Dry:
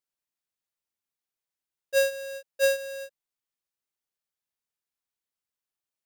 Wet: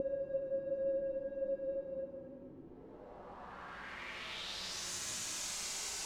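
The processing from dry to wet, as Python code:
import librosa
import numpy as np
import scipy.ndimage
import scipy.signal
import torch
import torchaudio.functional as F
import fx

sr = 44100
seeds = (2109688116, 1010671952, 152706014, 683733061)

p1 = fx.quant_dither(x, sr, seeds[0], bits=6, dither='triangular')
p2 = x + (p1 * librosa.db_to_amplitude(-8.0))
p3 = fx.paulstretch(p2, sr, seeds[1], factor=12.0, window_s=0.1, from_s=2.9)
p4 = fx.filter_sweep_lowpass(p3, sr, from_hz=320.0, to_hz=6800.0, start_s=2.64, end_s=4.92, q=2.2)
y = p4 * librosa.db_to_amplitude(3.0)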